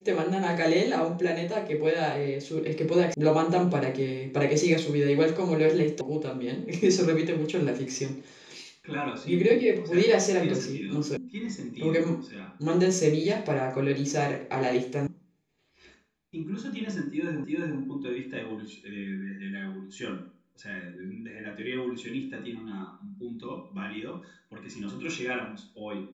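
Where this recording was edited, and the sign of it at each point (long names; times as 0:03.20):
0:03.14: cut off before it has died away
0:06.01: cut off before it has died away
0:11.17: cut off before it has died away
0:15.07: cut off before it has died away
0:17.44: the same again, the last 0.35 s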